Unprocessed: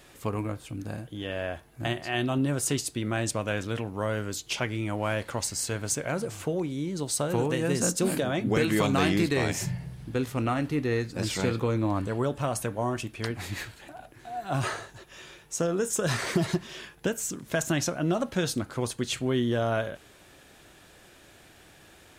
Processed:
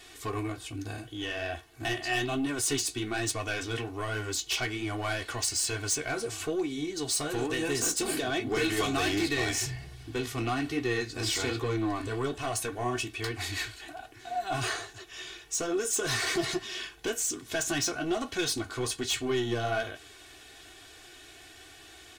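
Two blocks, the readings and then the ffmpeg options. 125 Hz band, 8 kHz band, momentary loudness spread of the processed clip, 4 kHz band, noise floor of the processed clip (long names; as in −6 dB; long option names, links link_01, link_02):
−7.0 dB, +1.5 dB, 15 LU, +3.5 dB, −52 dBFS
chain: -af "equalizer=frequency=4300:width=0.39:gain=8.5,asoftclip=type=tanh:threshold=-22dB,flanger=delay=9.8:depth=7.4:regen=-43:speed=1.2:shape=triangular,aecho=1:1:2.7:0.87"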